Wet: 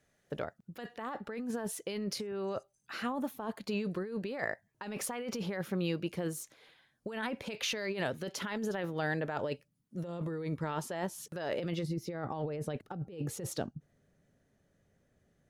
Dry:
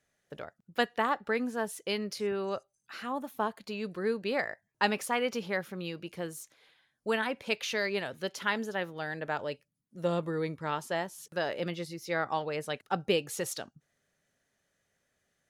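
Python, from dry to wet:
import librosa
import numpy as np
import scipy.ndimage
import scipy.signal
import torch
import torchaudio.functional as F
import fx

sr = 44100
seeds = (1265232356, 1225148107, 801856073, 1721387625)

y = fx.tilt_shelf(x, sr, db=fx.steps((0.0, 3.0), (11.82, 9.5)), hz=670.0)
y = fx.over_compress(y, sr, threshold_db=-36.0, ratio=-1.0)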